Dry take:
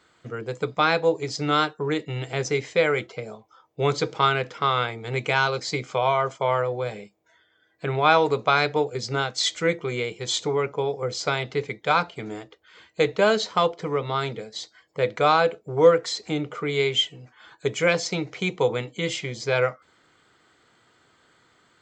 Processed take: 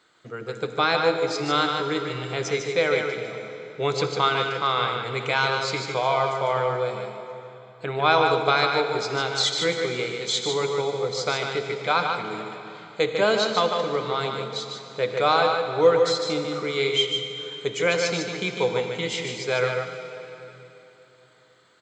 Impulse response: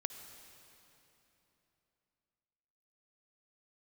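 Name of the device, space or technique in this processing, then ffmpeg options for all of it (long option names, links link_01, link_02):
PA in a hall: -filter_complex "[0:a]highpass=frequency=190:poles=1,equalizer=frequency=3900:width_type=o:width=0.25:gain=5,aecho=1:1:150:0.531[link_01];[1:a]atrim=start_sample=2205[link_02];[link_01][link_02]afir=irnorm=-1:irlink=0"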